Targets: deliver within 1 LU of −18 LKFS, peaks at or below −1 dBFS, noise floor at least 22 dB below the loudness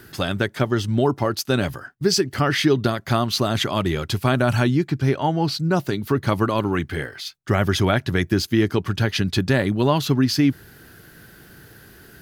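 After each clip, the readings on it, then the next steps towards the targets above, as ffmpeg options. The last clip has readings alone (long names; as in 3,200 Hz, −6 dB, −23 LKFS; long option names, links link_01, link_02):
integrated loudness −21.5 LKFS; sample peak −5.0 dBFS; target loudness −18.0 LKFS
→ -af "volume=3.5dB"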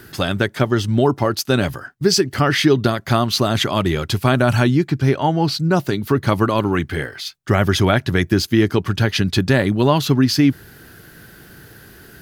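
integrated loudness −18.0 LKFS; sample peak −1.5 dBFS; background noise floor −45 dBFS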